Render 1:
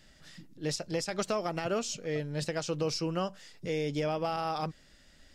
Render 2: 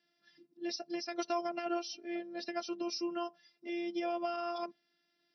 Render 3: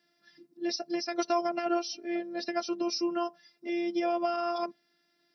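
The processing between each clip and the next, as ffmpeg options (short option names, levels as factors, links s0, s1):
-af "afftdn=nr=12:nf=-46,afftfilt=real='hypot(re,im)*cos(PI*b)':imag='0':win_size=512:overlap=0.75,afftfilt=real='re*between(b*sr/4096,140,5900)':imag='im*between(b*sr/4096,140,5900)':win_size=4096:overlap=0.75"
-af "equalizer=f=3000:t=o:w=0.55:g=-5,volume=2.11"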